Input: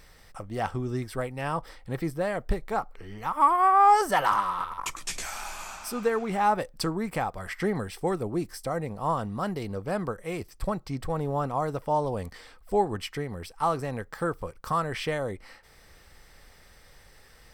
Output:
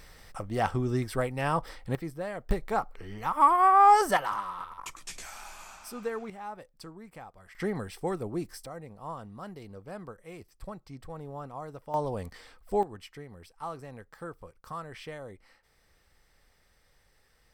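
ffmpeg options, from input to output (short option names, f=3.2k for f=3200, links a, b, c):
-af "asetnsamples=n=441:p=0,asendcmd='1.95 volume volume -7dB;2.51 volume volume 0dB;4.17 volume volume -8dB;6.3 volume volume -17dB;7.55 volume volume -4dB;8.66 volume volume -12dB;11.94 volume volume -3dB;12.83 volume volume -12dB',volume=2dB"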